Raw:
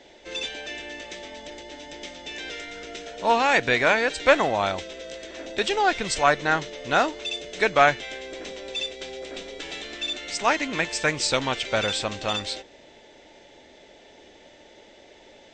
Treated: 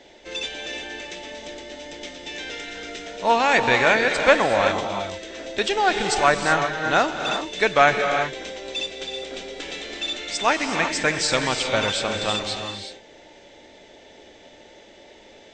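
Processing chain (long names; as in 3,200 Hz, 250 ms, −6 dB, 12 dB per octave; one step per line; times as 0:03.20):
reverb whose tail is shaped and stops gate 400 ms rising, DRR 5 dB
level +1.5 dB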